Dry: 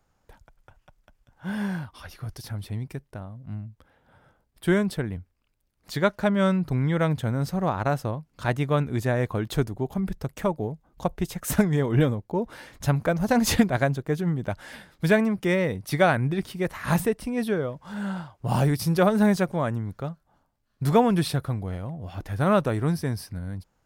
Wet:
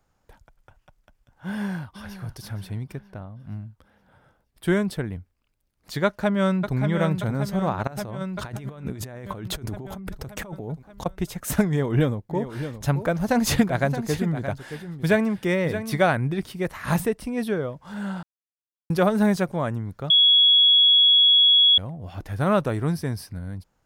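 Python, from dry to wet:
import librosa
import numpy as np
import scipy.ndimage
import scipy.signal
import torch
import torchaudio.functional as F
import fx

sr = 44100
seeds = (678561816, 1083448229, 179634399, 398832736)

y = fx.echo_throw(x, sr, start_s=1.48, length_s=0.69, ms=470, feedback_pct=45, wet_db=-12.0)
y = fx.peak_eq(y, sr, hz=10000.0, db=-8.5, octaves=1.4, at=(2.92, 3.4))
y = fx.echo_throw(y, sr, start_s=6.05, length_s=0.71, ms=580, feedback_pct=65, wet_db=-7.0)
y = fx.over_compress(y, sr, threshold_db=-34.0, ratio=-1.0, at=(7.87, 11.06))
y = fx.echo_single(y, sr, ms=622, db=-10.5, at=(12.29, 16.06), fade=0.02)
y = fx.edit(y, sr, fx.silence(start_s=18.23, length_s=0.67),
    fx.bleep(start_s=20.1, length_s=1.68, hz=3350.0, db=-12.5), tone=tone)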